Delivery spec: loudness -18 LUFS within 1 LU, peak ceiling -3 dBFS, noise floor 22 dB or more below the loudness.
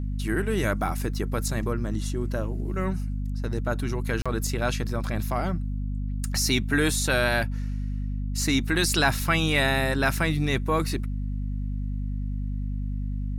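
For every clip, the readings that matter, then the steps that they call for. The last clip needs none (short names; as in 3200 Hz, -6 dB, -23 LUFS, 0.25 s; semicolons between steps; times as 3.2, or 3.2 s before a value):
dropouts 1; longest dropout 36 ms; hum 50 Hz; harmonics up to 250 Hz; hum level -26 dBFS; loudness -27.0 LUFS; peak -8.5 dBFS; loudness target -18.0 LUFS
-> interpolate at 4.22, 36 ms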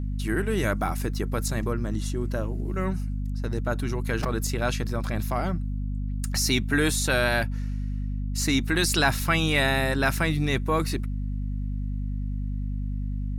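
dropouts 0; hum 50 Hz; harmonics up to 250 Hz; hum level -26 dBFS
-> notches 50/100/150/200/250 Hz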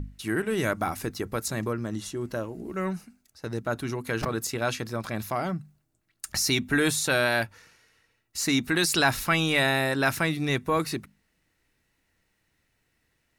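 hum none; loudness -27.0 LUFS; peak -9.5 dBFS; loudness target -18.0 LUFS
-> gain +9 dB; limiter -3 dBFS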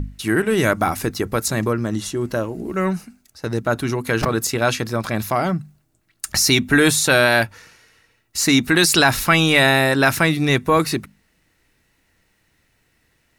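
loudness -18.0 LUFS; peak -3.0 dBFS; noise floor -65 dBFS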